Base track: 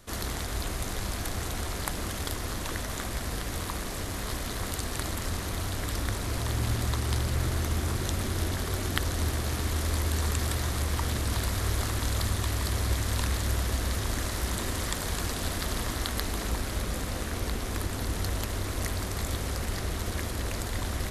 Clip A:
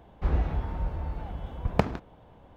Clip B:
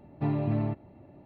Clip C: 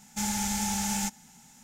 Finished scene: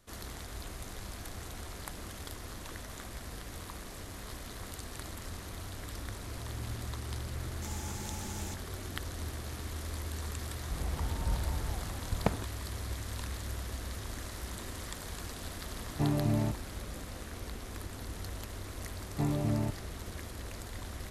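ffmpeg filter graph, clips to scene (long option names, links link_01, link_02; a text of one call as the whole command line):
ffmpeg -i bed.wav -i cue0.wav -i cue1.wav -i cue2.wav -filter_complex "[2:a]asplit=2[link_01][link_02];[0:a]volume=-10.5dB[link_03];[3:a]highpass=180[link_04];[1:a]dynaudnorm=framelen=130:gausssize=9:maxgain=13dB[link_05];[link_04]atrim=end=1.63,asetpts=PTS-STARTPTS,volume=-14.5dB,afade=type=in:duration=0.004:curve=hsin,afade=type=out:start_time=1.626:duration=0.004:curve=hsin,adelay=7450[link_06];[link_05]atrim=end=2.56,asetpts=PTS-STARTPTS,volume=-13.5dB,afade=type=in:duration=0.004:curve=hsin,afade=type=out:start_time=2.556:duration=0.004:curve=hsin,adelay=10470[link_07];[link_01]atrim=end=1.25,asetpts=PTS-STARTPTS,volume=-1.5dB,afade=type=in:duration=0.004:curve=hsin,afade=type=out:start_time=1.246:duration=0.004:curve=hsin,adelay=15780[link_08];[link_02]atrim=end=1.25,asetpts=PTS-STARTPTS,volume=-3dB,afade=type=in:duration=0.004:curve=hsin,afade=type=out:start_time=1.246:duration=0.004:curve=hsin,adelay=18970[link_09];[link_03][link_06][link_07][link_08][link_09]amix=inputs=5:normalize=0" out.wav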